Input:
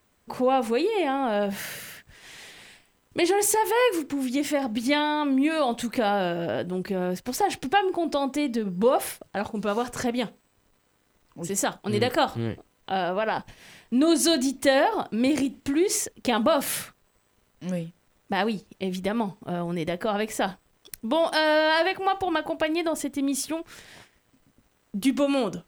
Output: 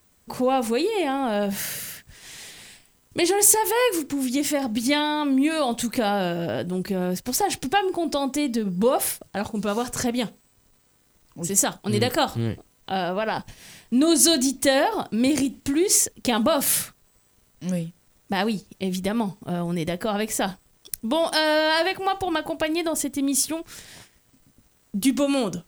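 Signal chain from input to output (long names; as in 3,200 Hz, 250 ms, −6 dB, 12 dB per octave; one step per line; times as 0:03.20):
bass and treble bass +5 dB, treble +9 dB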